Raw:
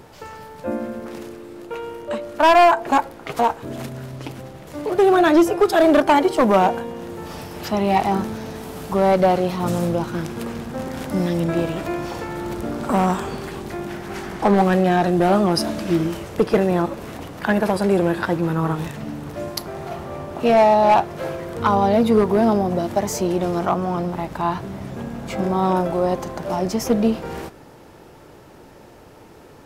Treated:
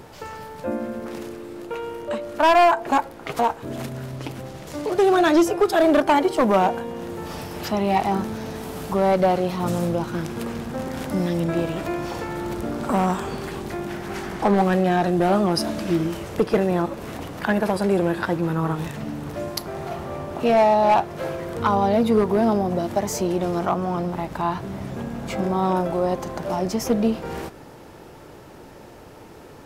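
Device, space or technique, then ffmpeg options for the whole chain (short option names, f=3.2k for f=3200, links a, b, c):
parallel compression: -filter_complex "[0:a]asettb=1/sr,asplit=3[a][b][c];[a]atrim=end=4.484[d];[b]atrim=start=4.48:end=5.52,asetpts=PTS-STARTPTS,afade=t=in:d=0.004:c=qsin,afade=t=out:st=1.036:d=0.004:c=qsin,equalizer=f=5.8k:t=o:w=1.5:g=5.5[e];[c]atrim=start=5.516[f];[d][e]acrossfade=d=0.004:c1=hsin:c2=qsin[g];[g][f]acrossfade=d=0.004:c1=qsin:c2=hsin,asplit=2[h][i];[i]acompressor=threshold=-31dB:ratio=6,volume=-2dB[j];[h][j]amix=inputs=2:normalize=0,volume=-3.5dB"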